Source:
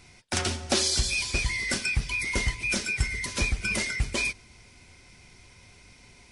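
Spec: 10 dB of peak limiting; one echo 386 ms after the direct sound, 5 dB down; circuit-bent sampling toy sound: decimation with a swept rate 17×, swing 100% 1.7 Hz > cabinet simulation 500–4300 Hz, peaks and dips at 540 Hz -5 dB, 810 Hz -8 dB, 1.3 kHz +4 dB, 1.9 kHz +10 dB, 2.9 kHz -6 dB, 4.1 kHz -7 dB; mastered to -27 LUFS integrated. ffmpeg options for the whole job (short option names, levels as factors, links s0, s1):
-af "alimiter=limit=0.0841:level=0:latency=1,aecho=1:1:386:0.562,acrusher=samples=17:mix=1:aa=0.000001:lfo=1:lforange=17:lforate=1.7,highpass=500,equalizer=f=540:t=q:w=4:g=-5,equalizer=f=810:t=q:w=4:g=-8,equalizer=f=1300:t=q:w=4:g=4,equalizer=f=1900:t=q:w=4:g=10,equalizer=f=2900:t=q:w=4:g=-6,equalizer=f=4100:t=q:w=4:g=-7,lowpass=f=4300:w=0.5412,lowpass=f=4300:w=1.3066,volume=1.58"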